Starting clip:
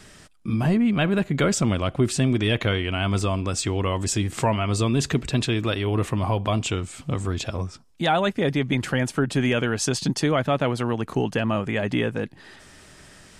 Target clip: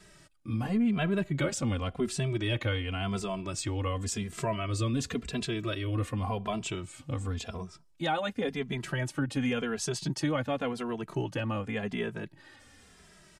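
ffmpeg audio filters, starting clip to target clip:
-filter_complex "[0:a]asettb=1/sr,asplit=3[s0][s1][s2];[s0]atrim=end=3.884[s3];[s1]atrim=start=3.88:end=6.13,asetpts=PTS-STARTPTS,afade=t=in:d=0.004:c=qsin,afade=t=out:st=2.246:d=0.004:c=qsin,asuperstop=centerf=850:order=8:qfactor=4.9[s4];[s2]atrim=start=6.126[s5];[s3][s4]acrossfade=d=0.004:c1=hsin:c2=qsin[s6];[s6][s5]acrossfade=d=0.004:c1=qsin:c2=hsin,asplit=2[s7][s8];[s8]adelay=2.6,afreqshift=-0.91[s9];[s7][s9]amix=inputs=2:normalize=1,volume=0.531"

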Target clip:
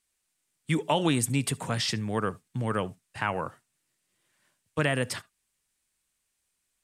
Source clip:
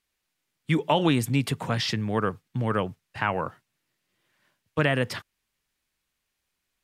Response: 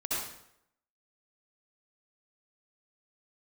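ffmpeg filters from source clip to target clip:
-filter_complex "[0:a]equalizer=f=8600:w=1.3:g=12.5,asplit=2[s0][s1];[1:a]atrim=start_sample=2205,atrim=end_sample=3528[s2];[s1][s2]afir=irnorm=-1:irlink=0,volume=0.0631[s3];[s0][s3]amix=inputs=2:normalize=0,volume=0.668"

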